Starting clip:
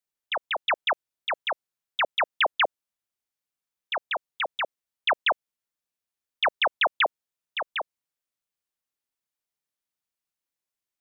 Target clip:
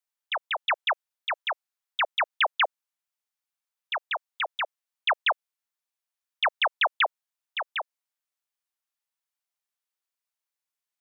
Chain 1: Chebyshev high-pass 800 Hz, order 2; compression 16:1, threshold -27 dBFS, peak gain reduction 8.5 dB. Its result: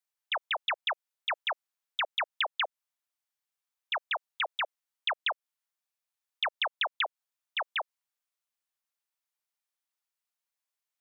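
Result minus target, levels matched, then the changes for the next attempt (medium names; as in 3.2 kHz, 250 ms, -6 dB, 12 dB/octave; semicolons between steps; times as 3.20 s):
compression: peak gain reduction +8.5 dB
remove: compression 16:1, threshold -27 dBFS, peak gain reduction 8.5 dB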